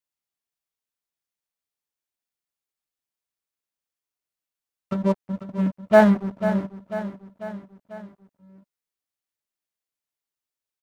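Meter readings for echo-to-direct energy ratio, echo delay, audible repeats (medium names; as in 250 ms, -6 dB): -10.0 dB, 494 ms, 4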